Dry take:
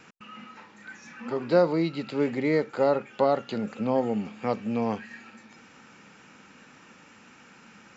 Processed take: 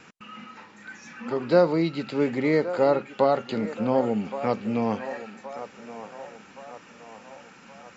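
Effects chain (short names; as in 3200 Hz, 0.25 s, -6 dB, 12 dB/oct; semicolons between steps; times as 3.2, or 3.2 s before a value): on a send: narrowing echo 1.121 s, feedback 56%, band-pass 890 Hz, level -10.5 dB; on the sum: gain +2.5 dB; MP3 48 kbps 44100 Hz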